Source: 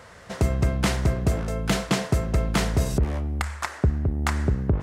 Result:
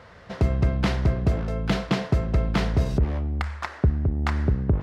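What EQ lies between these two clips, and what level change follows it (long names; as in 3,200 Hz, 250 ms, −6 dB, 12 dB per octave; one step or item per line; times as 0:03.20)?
high-frequency loss of the air 340 metres
bass and treble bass +1 dB, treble +14 dB
0.0 dB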